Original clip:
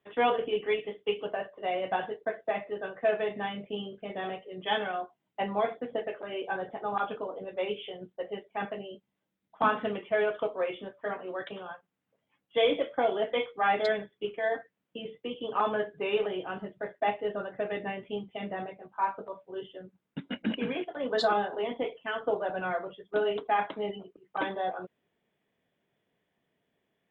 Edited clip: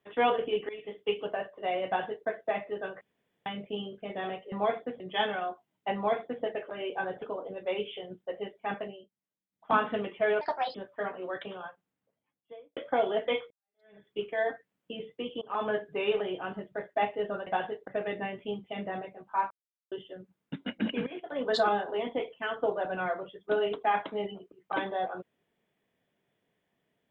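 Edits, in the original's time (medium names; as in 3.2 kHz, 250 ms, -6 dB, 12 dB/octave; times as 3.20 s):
0.69–0.99 s: fade in, from -22.5 dB
1.86–2.27 s: copy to 17.52 s
3.01–3.46 s: room tone
5.47–5.95 s: copy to 4.52 s
6.74–7.13 s: delete
8.75–9.64 s: dip -15 dB, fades 0.22 s
10.32–10.80 s: speed 143%
11.70–12.82 s: studio fade out
13.56–14.10 s: fade in exponential
15.47–15.75 s: fade in, from -23 dB
19.15–19.56 s: mute
20.71–20.96 s: fade in, from -15.5 dB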